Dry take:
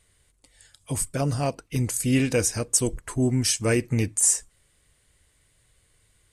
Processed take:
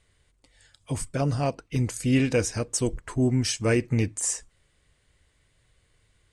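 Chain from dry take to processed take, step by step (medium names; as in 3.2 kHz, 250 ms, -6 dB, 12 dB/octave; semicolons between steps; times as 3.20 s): distance through air 71 m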